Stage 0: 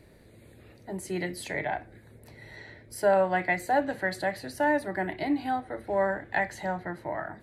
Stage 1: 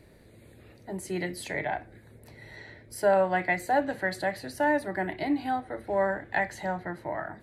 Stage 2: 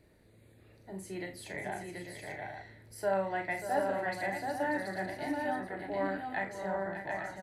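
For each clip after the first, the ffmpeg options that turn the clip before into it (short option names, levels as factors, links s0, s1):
-af anull
-filter_complex "[0:a]asplit=2[s0][s1];[s1]adelay=36,volume=0.376[s2];[s0][s2]amix=inputs=2:normalize=0,aecho=1:1:47|587|730|843:0.335|0.335|0.631|0.398,volume=0.355"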